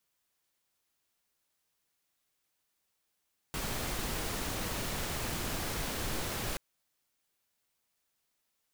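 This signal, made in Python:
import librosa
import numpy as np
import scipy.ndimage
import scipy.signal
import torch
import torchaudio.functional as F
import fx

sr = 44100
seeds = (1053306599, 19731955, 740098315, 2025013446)

y = fx.noise_colour(sr, seeds[0], length_s=3.03, colour='pink', level_db=-35.5)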